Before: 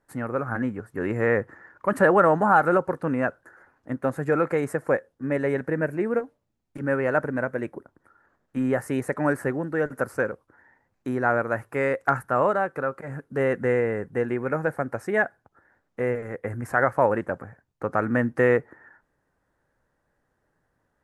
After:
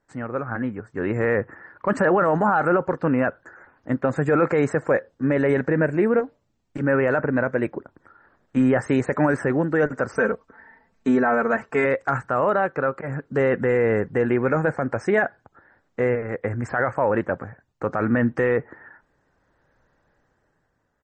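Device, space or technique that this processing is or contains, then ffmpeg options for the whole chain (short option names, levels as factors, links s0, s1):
low-bitrate web radio: -filter_complex "[0:a]asplit=3[s0][s1][s2];[s0]afade=t=out:st=10.14:d=0.02[s3];[s1]aecho=1:1:4.5:0.94,afade=t=in:st=10.14:d=0.02,afade=t=out:st=11.84:d=0.02[s4];[s2]afade=t=in:st=11.84:d=0.02[s5];[s3][s4][s5]amix=inputs=3:normalize=0,dynaudnorm=f=200:g=11:m=3.35,alimiter=limit=0.299:level=0:latency=1:release=13" -ar 48000 -c:a libmp3lame -b:a 32k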